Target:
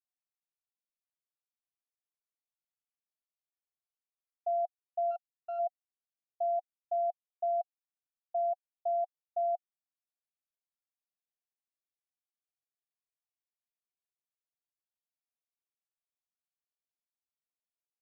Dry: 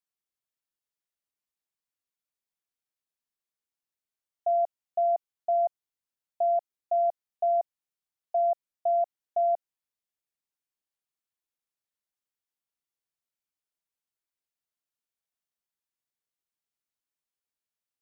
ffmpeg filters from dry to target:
-filter_complex "[0:a]asplit=3[s0][s1][s2];[s0]afade=t=out:st=5.1:d=0.02[s3];[s1]aeval=exprs='max(val(0),0)':c=same,afade=t=in:st=5.1:d=0.02,afade=t=out:st=5.58:d=0.02[s4];[s2]afade=t=in:st=5.58:d=0.02[s5];[s3][s4][s5]amix=inputs=3:normalize=0,asplit=3[s6][s7][s8];[s6]bandpass=f=730:t=q:w=8,volume=1[s9];[s7]bandpass=f=1090:t=q:w=8,volume=0.501[s10];[s8]bandpass=f=2440:t=q:w=8,volume=0.355[s11];[s9][s10][s11]amix=inputs=3:normalize=0,volume=0.631"

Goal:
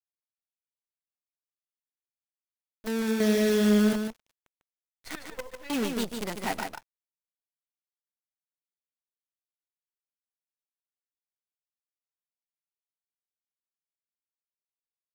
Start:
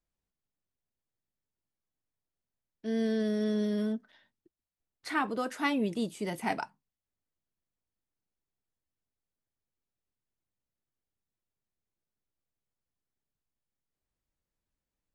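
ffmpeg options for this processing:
-filter_complex "[0:a]asettb=1/sr,asplit=3[s0][s1][s2];[s0]atrim=end=3.204[s3];[s1]atrim=start=3.2:end=3.93,asetpts=PTS-STARTPTS,afade=t=in:d=0.004:c=qsin,afade=t=out:st=0.726:d=0.004:c=qsin,acontrast=74[s4];[s2]atrim=start=3.926[s5];[s3][s4]acrossfade=d=0.004:c1=hsin:c2=qsin[s6];[s6][s5]acrossfade=d=0.004:c1=qsin:c2=hsin,asettb=1/sr,asplit=3[s7][s8][s9];[s7]atrim=end=5.154[s10];[s8]atrim=start=5.15:end=5.7,asetpts=PTS-STARTPTS,afade=t=in:d=0.004:c=qsin,afade=t=out:st=0.546:d=0.004:c=qsin,asplit=3[s11][s12][s13];[s11]bandpass=f=530:t=q:w=8,volume=1[s14];[s12]bandpass=f=1840:t=q:w=8,volume=0.501[s15];[s13]bandpass=f=2480:t=q:w=8,volume=0.355[s16];[s14][s15][s16]amix=inputs=3:normalize=0[s17];[s9]atrim=start=5.696[s18];[s10][s17]acrossfade=d=0.004:c1=hsin:c2=qsin[s19];[s19][s18]acrossfade=d=0.004:c1=qsin:c2=hsin,acrusher=bits=6:dc=4:mix=0:aa=0.000001,aecho=1:1:148:0.501"

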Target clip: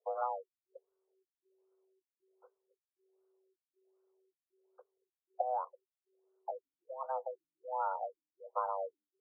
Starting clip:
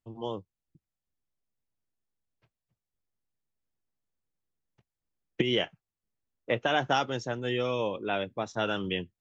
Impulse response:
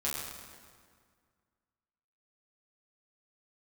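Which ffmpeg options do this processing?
-af "acompressor=threshold=0.01:ratio=4,afreqshift=380,afftfilt=real='re*lt(b*sr/1024,270*pow(1600/270,0.5+0.5*sin(2*PI*1.3*pts/sr)))':imag='im*lt(b*sr/1024,270*pow(1600/270,0.5+0.5*sin(2*PI*1.3*pts/sr)))':win_size=1024:overlap=0.75,volume=2.37"

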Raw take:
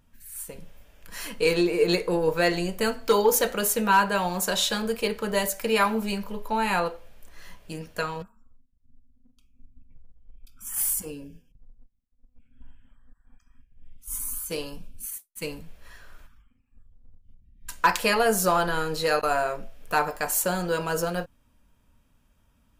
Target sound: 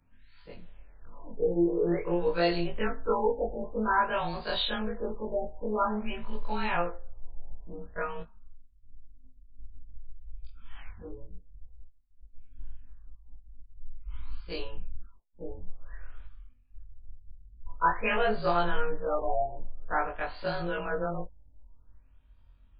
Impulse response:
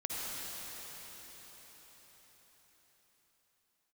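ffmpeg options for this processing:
-af "afftfilt=real='re':imag='-im':win_size=2048:overlap=0.75,asubboost=boost=6:cutoff=68,afftfilt=real='re*lt(b*sr/1024,900*pow(5000/900,0.5+0.5*sin(2*PI*0.5*pts/sr)))':imag='im*lt(b*sr/1024,900*pow(5000/900,0.5+0.5*sin(2*PI*0.5*pts/sr)))':win_size=1024:overlap=0.75"

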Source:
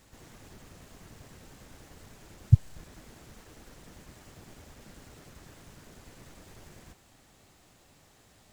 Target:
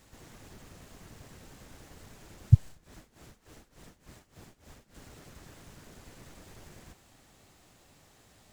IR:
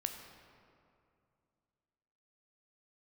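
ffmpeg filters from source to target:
-filter_complex "[0:a]asettb=1/sr,asplit=3[s0][s1][s2];[s0]atrim=end=2.664[s3];[s1]atrim=start=2.66:end=4.95,asetpts=PTS-STARTPTS,afade=t=in:d=0.004:c=qsin,afade=t=out:st=2.286:d=0.004:c=qsin,tremolo=f=3.4:d=0.88[s4];[s2]atrim=start=4.946[s5];[s3][s4]acrossfade=d=0.004:c1=hsin:c2=qsin[s6];[s6][s5]acrossfade=d=0.004:c1=qsin:c2=hsin"

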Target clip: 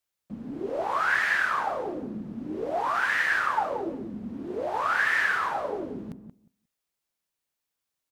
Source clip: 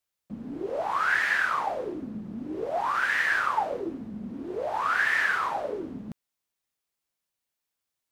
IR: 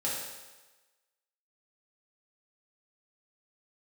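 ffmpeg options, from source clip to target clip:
-filter_complex "[0:a]asplit=2[s0][s1];[s1]adelay=179,lowpass=f=940:p=1,volume=0.447,asplit=2[s2][s3];[s3]adelay=179,lowpass=f=940:p=1,volume=0.15,asplit=2[s4][s5];[s5]adelay=179,lowpass=f=940:p=1,volume=0.15[s6];[s0][s2][s4][s6]amix=inputs=4:normalize=0"

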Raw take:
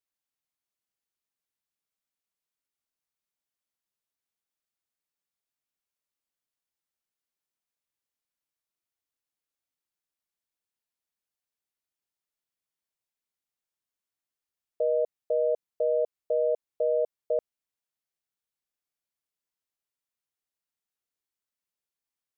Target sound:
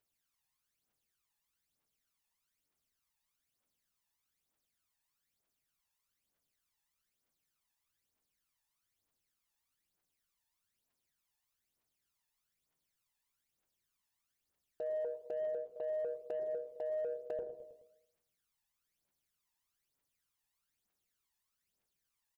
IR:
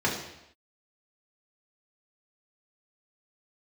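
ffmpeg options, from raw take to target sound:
-filter_complex "[0:a]bandreject=f=60:t=h:w=6,bandreject=f=120:t=h:w=6,bandreject=f=180:t=h:w=6,bandreject=f=240:t=h:w=6,bandreject=f=300:t=h:w=6,bandreject=f=360:t=h:w=6,bandreject=f=420:t=h:w=6,bandreject=f=480:t=h:w=6,aphaser=in_gain=1:out_gain=1:delay=1.2:decay=0.68:speed=1.1:type=triangular,aecho=1:1:106|212|318|424:0.0944|0.0491|0.0255|0.0133,acompressor=threshold=0.0178:ratio=10,asplit=2[s0][s1];[1:a]atrim=start_sample=2205,adelay=93[s2];[s1][s2]afir=irnorm=-1:irlink=0,volume=0.0447[s3];[s0][s3]amix=inputs=2:normalize=0,aeval=exprs='0.0501*(cos(1*acos(clip(val(0)/0.0501,-1,1)))-cos(1*PI/2))+0.00126*(cos(7*acos(clip(val(0)/0.0501,-1,1)))-cos(7*PI/2))':c=same,alimiter=level_in=3.98:limit=0.0631:level=0:latency=1:release=21,volume=0.251,volume=1.58"

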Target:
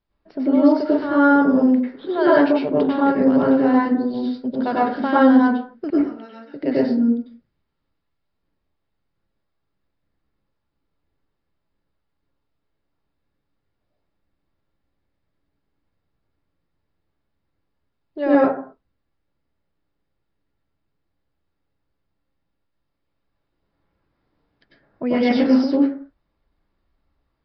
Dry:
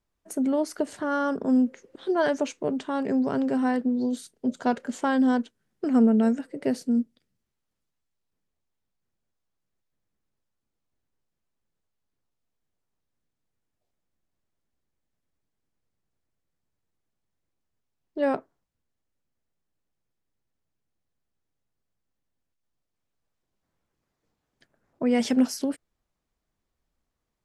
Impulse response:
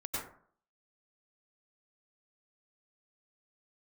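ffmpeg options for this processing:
-filter_complex "[0:a]asettb=1/sr,asplit=3[s0][s1][s2];[s0]atrim=end=5.904[s3];[s1]atrim=start=5.9:end=6.54,asetpts=PTS-STARTPTS,afade=t=in:d=0.004:c=qsin,afade=t=out:st=0.636:d=0.004:c=qsin,aderivative[s4];[s2]atrim=start=6.536[s5];[s3][s4]acrossfade=d=0.004:c1=hsin:c2=qsin[s6];[s6][s5]acrossfade=d=0.004:c1=qsin:c2=hsin[s7];[1:a]atrim=start_sample=2205,afade=t=out:st=0.43:d=0.01,atrim=end_sample=19404[s8];[s7][s8]afir=irnorm=-1:irlink=0,aresample=11025,aresample=44100,volume=1.88"

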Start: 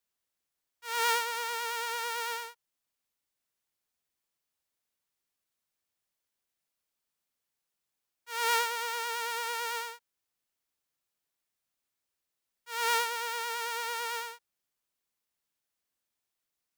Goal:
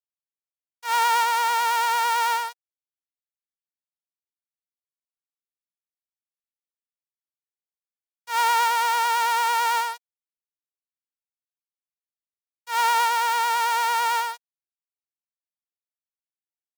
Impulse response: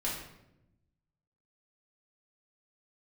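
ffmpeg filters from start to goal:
-af "acrusher=bits=6:mix=0:aa=0.5,alimiter=limit=0.106:level=0:latency=1:release=36,highpass=f=760:t=q:w=4.9,volume=2.37"

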